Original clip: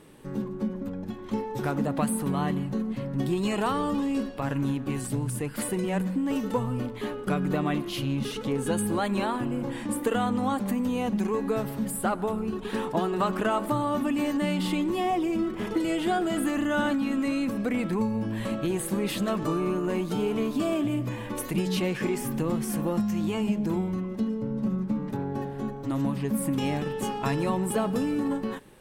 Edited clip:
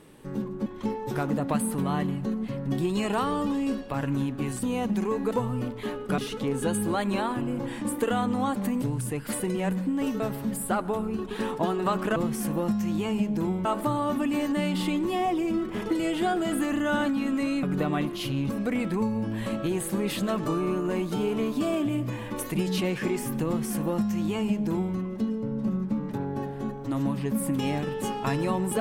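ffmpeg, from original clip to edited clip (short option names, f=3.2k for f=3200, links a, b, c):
-filter_complex "[0:a]asplit=11[a][b][c][d][e][f][g][h][i][j][k];[a]atrim=end=0.662[l];[b]atrim=start=1.138:end=5.112[m];[c]atrim=start=10.858:end=11.542[n];[d]atrim=start=6.488:end=7.362[o];[e]atrim=start=8.218:end=10.862[p];[f]atrim=start=5.108:end=6.492[q];[g]atrim=start=11.538:end=13.502[r];[h]atrim=start=22.448:end=23.942[s];[i]atrim=start=13.498:end=17.482[t];[j]atrim=start=7.358:end=8.222[u];[k]atrim=start=17.478[v];[l][m]acrossfade=d=0.004:c1=hsin:c2=hsin[w];[w][n]acrossfade=d=0.004:c1=hsin:c2=hsin[x];[x][o]acrossfade=d=0.004:c1=hsin:c2=hsin[y];[y][p]acrossfade=d=0.004:c1=hsin:c2=hsin[z];[z][q]acrossfade=d=0.004:c1=hsin:c2=hsin[aa];[aa][r]acrossfade=d=0.004:c1=hsin:c2=hsin[ab];[ab][s]acrossfade=d=0.004:c1=hsin:c2=hsin[ac];[ac][t]acrossfade=d=0.004:c1=hsin:c2=hsin[ad];[ad][u]acrossfade=d=0.004:c1=hsin:c2=hsin[ae];[ae][v]acrossfade=d=0.004:c1=hsin:c2=hsin"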